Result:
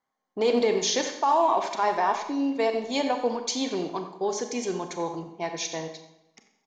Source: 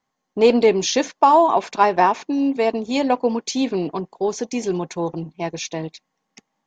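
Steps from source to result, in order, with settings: bass shelf 350 Hz -11 dB; band-stop 2.6 kHz, Q 7.8; peak limiter -13.5 dBFS, peak gain reduction 8.5 dB; speakerphone echo 90 ms, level -13 dB; Schroeder reverb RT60 0.9 s, combs from 29 ms, DRR 6.5 dB; tape noise reduction on one side only decoder only; trim -2 dB

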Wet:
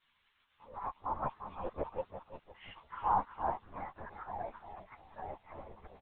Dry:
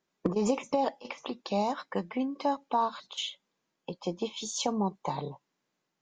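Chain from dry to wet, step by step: reverse the whole clip; Doppler pass-by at 2.09 s, 24 m/s, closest 8 m; modulation noise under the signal 22 dB; steep low-pass 1.8 kHz 36 dB/octave; crackle 560 per s -65 dBFS; high-pass 980 Hz 12 dB/octave; feedback delay 348 ms, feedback 31%, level -9 dB; LPC vocoder at 8 kHz whisper; three-phase chorus; trim +14.5 dB

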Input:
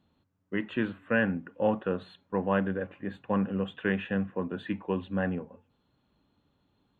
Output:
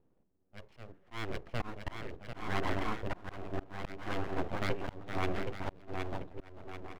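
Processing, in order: local Wiener filter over 41 samples; dynamic bell 250 Hz, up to -5 dB, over -43 dBFS, Q 1.7; bouncing-ball echo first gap 770 ms, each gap 0.6×, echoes 5; full-wave rectifier; slow attack 372 ms; trim +1.5 dB

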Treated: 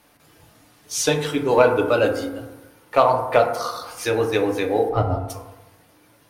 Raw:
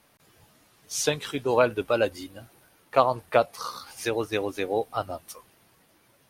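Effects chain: 4.89–5.30 s: RIAA curve playback; in parallel at -9 dB: hard clipper -17.5 dBFS, distortion -10 dB; on the sum: FDN reverb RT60 1.1 s, low-frequency decay 0.95×, high-frequency decay 0.3×, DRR 2.5 dB; trim +1.5 dB

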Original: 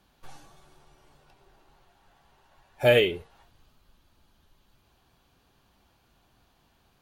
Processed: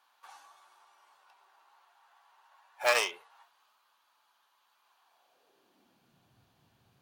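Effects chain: tracing distortion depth 0.17 ms; high-pass sweep 1 kHz -> 110 Hz, 5.01–6.34 s; trim -4 dB

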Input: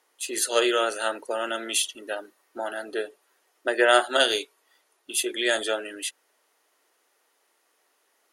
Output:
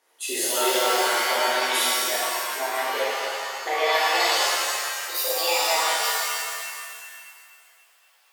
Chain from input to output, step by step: pitch bend over the whole clip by +9.5 st starting unshifted; compression, threshold -25 dBFS, peak gain reduction 11.5 dB; pitch-shifted reverb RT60 2 s, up +7 st, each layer -2 dB, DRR -8 dB; trim -2.5 dB

